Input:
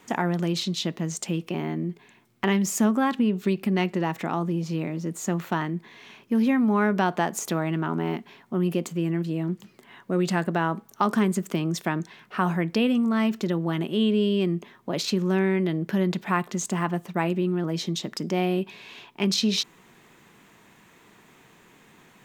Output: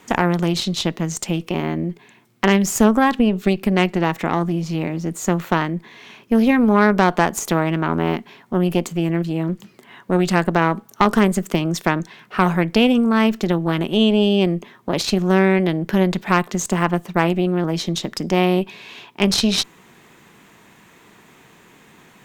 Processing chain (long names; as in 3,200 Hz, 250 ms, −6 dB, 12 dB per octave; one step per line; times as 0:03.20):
harmonic generator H 6 −14 dB, 8 −25 dB, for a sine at −6 dBFS
level +5.5 dB